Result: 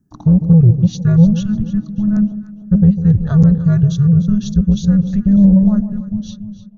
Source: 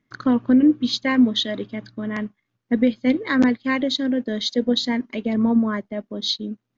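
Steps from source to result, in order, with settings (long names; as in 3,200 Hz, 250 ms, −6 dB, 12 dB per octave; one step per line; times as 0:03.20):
fade-out on the ending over 1.00 s
drawn EQ curve 130 Hz 0 dB, 200 Hz +7 dB, 430 Hz +4 dB, 3,500 Hz −24 dB, 7,900 Hz +4 dB
in parallel at +2.5 dB: brickwall limiter −10 dBFS, peak gain reduction 8 dB
on the sum: frequency shifter −420 Hz
soft clipping −1.5 dBFS, distortion −19 dB
on a send: delay that swaps between a low-pass and a high-pass 150 ms, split 930 Hz, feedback 61%, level −10.5 dB
on the sum: level −1 dB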